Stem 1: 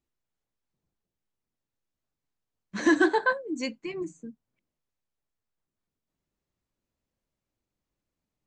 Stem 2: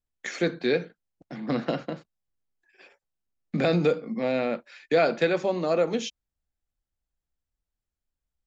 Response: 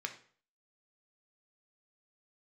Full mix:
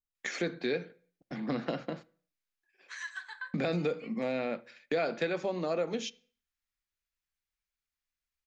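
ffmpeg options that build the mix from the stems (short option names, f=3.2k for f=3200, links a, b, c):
-filter_complex "[0:a]highpass=f=1.3k:w=0.5412,highpass=f=1.3k:w=1.3066,acompressor=threshold=-45dB:ratio=2,adelay=150,volume=-5dB,asplit=2[a][b];[b]volume=-5dB[c];[1:a]agate=range=-11dB:threshold=-45dB:ratio=16:detection=peak,volume=-1.5dB,asplit=3[d][e][f];[e]volume=-12.5dB[g];[f]apad=whole_len=379914[h];[a][h]sidechaincompress=threshold=-37dB:ratio=8:attack=16:release=140[i];[2:a]atrim=start_sample=2205[j];[c][g]amix=inputs=2:normalize=0[k];[k][j]afir=irnorm=-1:irlink=0[l];[i][d][l]amix=inputs=3:normalize=0,acompressor=threshold=-34dB:ratio=2"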